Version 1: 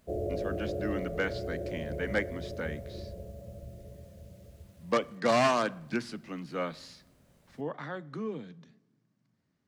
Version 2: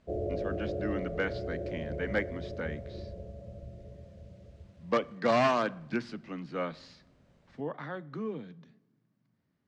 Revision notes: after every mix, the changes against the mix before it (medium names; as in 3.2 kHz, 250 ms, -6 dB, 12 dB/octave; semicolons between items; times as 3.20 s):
master: add distance through air 120 m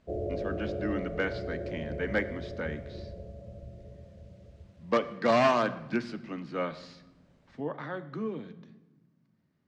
speech: send +11.5 dB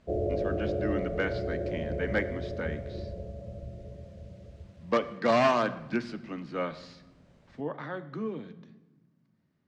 background +4.0 dB